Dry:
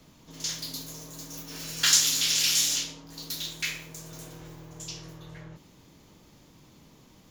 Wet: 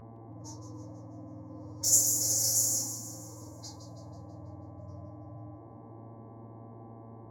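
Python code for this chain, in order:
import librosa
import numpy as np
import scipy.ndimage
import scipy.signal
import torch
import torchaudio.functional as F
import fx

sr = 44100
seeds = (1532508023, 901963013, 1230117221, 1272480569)

y = fx.env_lowpass(x, sr, base_hz=320.0, full_db=-23.5)
y = scipy.signal.sosfilt(scipy.signal.cheby1(3, 1.0, [430.0, 4900.0], 'bandstop', fs=sr, output='sos'), y)
y = fx.peak_eq(y, sr, hz=3700.0, db=-3.0, octaves=0.68)
y = fx.hum_notches(y, sr, base_hz=60, count=6)
y = fx.dmg_buzz(y, sr, base_hz=60.0, harmonics=19, level_db=-48.0, tilt_db=-4, odd_only=False)
y = fx.pitch_keep_formants(y, sr, semitones=11.0)
y = fx.echo_split(y, sr, split_hz=2100.0, low_ms=413, high_ms=163, feedback_pct=52, wet_db=-10.0)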